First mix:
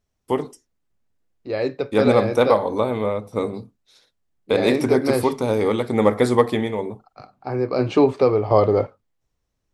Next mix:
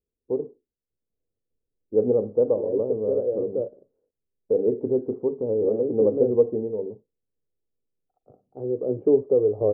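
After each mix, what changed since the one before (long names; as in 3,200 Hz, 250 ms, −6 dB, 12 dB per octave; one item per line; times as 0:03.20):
second voice: entry +1.10 s
master: add transistor ladder low-pass 520 Hz, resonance 60%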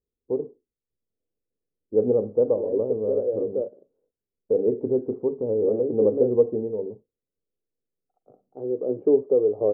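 second voice: add high-pass filter 180 Hz 12 dB per octave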